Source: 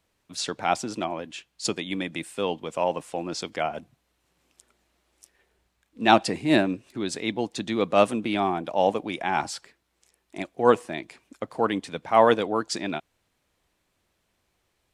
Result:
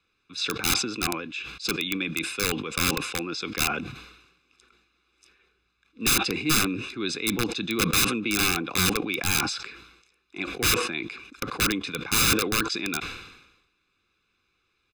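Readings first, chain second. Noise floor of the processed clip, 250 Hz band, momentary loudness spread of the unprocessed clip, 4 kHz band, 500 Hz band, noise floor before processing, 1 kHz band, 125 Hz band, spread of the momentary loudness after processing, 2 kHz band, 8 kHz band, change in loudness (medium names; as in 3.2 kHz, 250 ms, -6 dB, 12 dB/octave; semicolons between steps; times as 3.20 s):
-73 dBFS, -1.5 dB, 16 LU, +7.5 dB, -9.0 dB, -74 dBFS, -7.0 dB, +4.0 dB, 13 LU, +5.0 dB, +11.5 dB, +0.5 dB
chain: three-band isolator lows -13 dB, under 380 Hz, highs -22 dB, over 4.8 kHz; integer overflow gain 20.5 dB; peaking EQ 870 Hz -7 dB 1 oct; band-stop 920 Hz, Q 5.1; comb 0.8 ms, depth 97%; decay stretcher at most 60 dB/s; trim +3 dB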